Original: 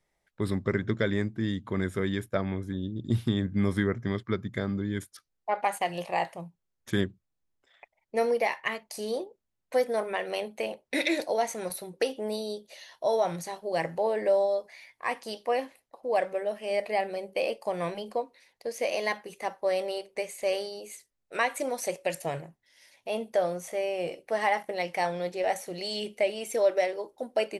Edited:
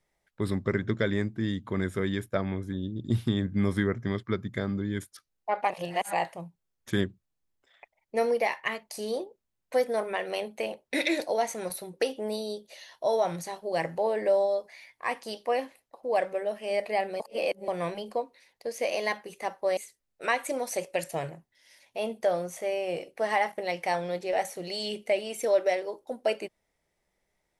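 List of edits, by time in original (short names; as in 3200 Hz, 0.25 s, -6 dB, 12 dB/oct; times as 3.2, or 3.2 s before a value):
5.7–6.13 reverse
17.2–17.68 reverse
19.77–20.88 cut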